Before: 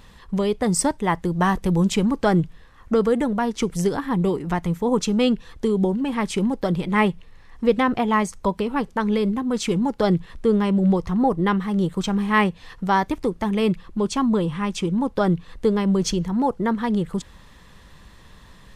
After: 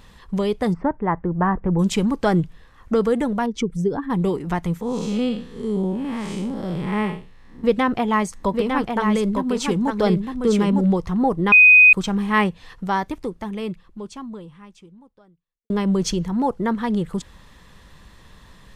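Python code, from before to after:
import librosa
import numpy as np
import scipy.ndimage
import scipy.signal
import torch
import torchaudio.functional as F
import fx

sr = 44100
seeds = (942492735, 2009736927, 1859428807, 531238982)

y = fx.lowpass(x, sr, hz=1700.0, slope=24, at=(0.72, 1.78), fade=0.02)
y = fx.spec_expand(y, sr, power=1.5, at=(3.46, 4.1))
y = fx.spec_blur(y, sr, span_ms=179.0, at=(4.81, 7.64))
y = fx.echo_single(y, sr, ms=904, db=-4.5, at=(8.31, 10.87), fade=0.02)
y = fx.edit(y, sr, fx.bleep(start_s=11.52, length_s=0.41, hz=2500.0, db=-6.5),
    fx.fade_out_span(start_s=12.48, length_s=3.22, curve='qua'), tone=tone)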